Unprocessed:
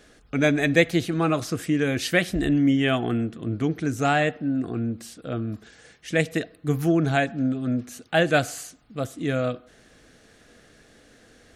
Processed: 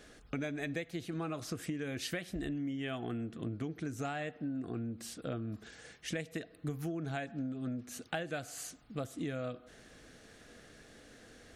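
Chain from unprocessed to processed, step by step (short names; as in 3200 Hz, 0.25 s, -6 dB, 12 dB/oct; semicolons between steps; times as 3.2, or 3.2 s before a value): compressor 16:1, threshold -32 dBFS, peak gain reduction 21 dB; gain -2.5 dB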